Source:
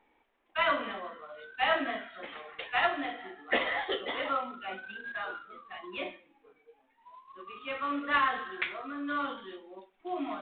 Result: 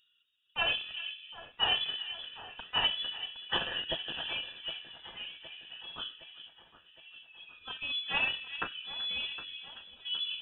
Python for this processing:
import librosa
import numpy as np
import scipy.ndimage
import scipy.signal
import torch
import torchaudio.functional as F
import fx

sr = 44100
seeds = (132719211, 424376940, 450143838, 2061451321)

p1 = fx.wiener(x, sr, points=15)
p2 = fx.high_shelf(p1, sr, hz=2100.0, db=8.0)
p3 = fx.fixed_phaser(p2, sr, hz=310.0, stages=8)
p4 = p3 + fx.echo_alternate(p3, sr, ms=382, hz=1900.0, feedback_pct=75, wet_db=-11.0, dry=0)
y = fx.freq_invert(p4, sr, carrier_hz=3700)